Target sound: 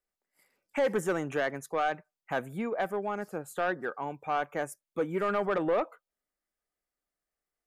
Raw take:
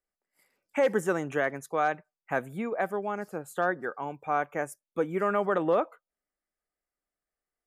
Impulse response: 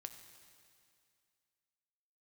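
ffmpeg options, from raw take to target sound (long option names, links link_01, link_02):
-af "asoftclip=type=tanh:threshold=-20.5dB"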